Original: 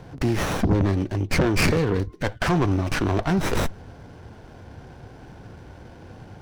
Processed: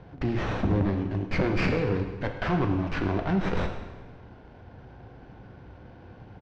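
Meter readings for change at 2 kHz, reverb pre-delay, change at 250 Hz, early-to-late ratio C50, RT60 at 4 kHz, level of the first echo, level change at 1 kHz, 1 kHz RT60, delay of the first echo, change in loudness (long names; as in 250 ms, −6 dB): −5.5 dB, 6 ms, −4.0 dB, 7.0 dB, 1.2 s, −16.0 dB, −4.5 dB, 1.3 s, 106 ms, −4.5 dB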